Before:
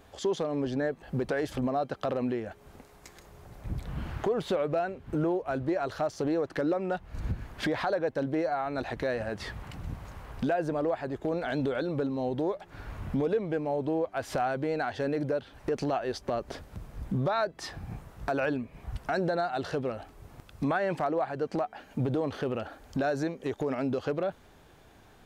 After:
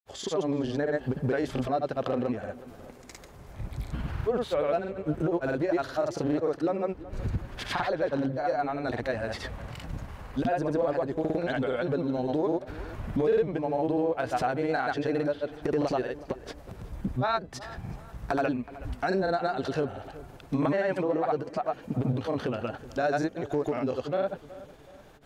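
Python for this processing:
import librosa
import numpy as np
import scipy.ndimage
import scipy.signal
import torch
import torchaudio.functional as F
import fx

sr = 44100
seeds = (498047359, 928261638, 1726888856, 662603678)

p1 = fx.granulator(x, sr, seeds[0], grain_ms=100.0, per_s=20.0, spray_ms=100.0, spread_st=0)
p2 = p1 + fx.echo_filtered(p1, sr, ms=372, feedback_pct=41, hz=3000.0, wet_db=-17.0, dry=0)
y = p2 * 10.0 ** (3.0 / 20.0)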